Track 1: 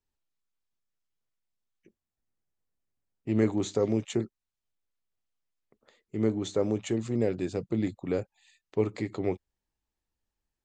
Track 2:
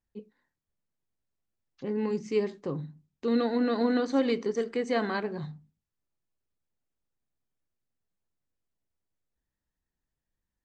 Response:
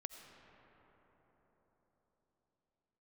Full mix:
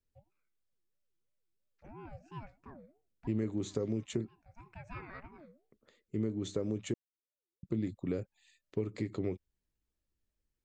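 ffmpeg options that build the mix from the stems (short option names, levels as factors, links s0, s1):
-filter_complex "[0:a]lowshelf=f=410:g=6.5,acompressor=threshold=0.0562:ratio=6,volume=0.596,asplit=3[s0][s1][s2];[s0]atrim=end=6.94,asetpts=PTS-STARTPTS,afade=t=out:st=6.936:d=0.004:c=hsin[s3];[s1]atrim=start=6.94:end=7.63,asetpts=PTS-STARTPTS,volume=0[s4];[s2]atrim=start=7.63,asetpts=PTS-STARTPTS,afade=t=in:d=0.004:c=hsin[s5];[s3][s4][s5]concat=n=3:v=0:a=1,asplit=2[s6][s7];[1:a]highshelf=f=2500:t=q:w=3:g=-6.5,aeval=exprs='val(0)*sin(2*PI*470*n/s+470*0.3/3*sin(2*PI*3*n/s))':c=same,volume=0.2[s8];[s7]apad=whole_len=469610[s9];[s8][s9]sidechaincompress=threshold=0.00224:ratio=10:attack=5.2:release=320[s10];[s6][s10]amix=inputs=2:normalize=0,equalizer=f=800:t=o:w=0.67:g=-8"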